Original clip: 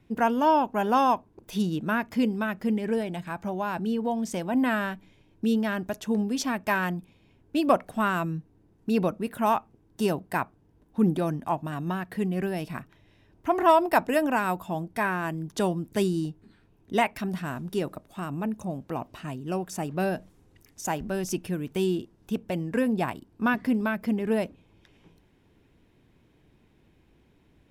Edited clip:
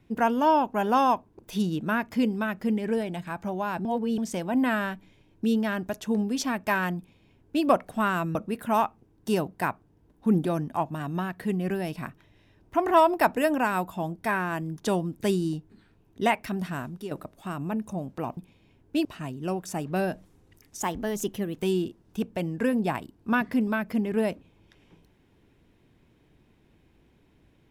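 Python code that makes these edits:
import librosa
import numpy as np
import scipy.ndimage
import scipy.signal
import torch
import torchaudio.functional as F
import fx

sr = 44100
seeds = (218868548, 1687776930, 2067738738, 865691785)

y = fx.edit(x, sr, fx.reverse_span(start_s=3.85, length_s=0.33),
    fx.duplicate(start_s=6.97, length_s=0.68, to_s=19.09),
    fx.cut(start_s=8.35, length_s=0.72),
    fx.fade_out_to(start_s=17.51, length_s=0.32, floor_db=-11.5),
    fx.speed_span(start_s=20.86, length_s=0.87, speed=1.12), tone=tone)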